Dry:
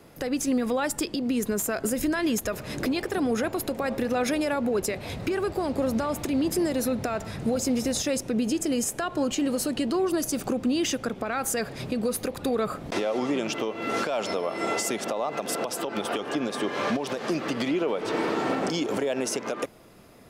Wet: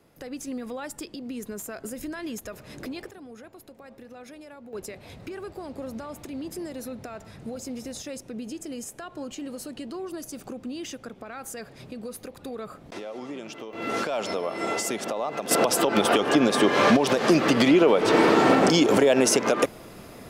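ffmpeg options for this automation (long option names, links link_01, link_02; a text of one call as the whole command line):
ffmpeg -i in.wav -af "asetnsamples=nb_out_samples=441:pad=0,asendcmd='3.11 volume volume -19dB;4.73 volume volume -10dB;13.73 volume volume -0.5dB;15.51 volume volume 8.5dB',volume=-9dB" out.wav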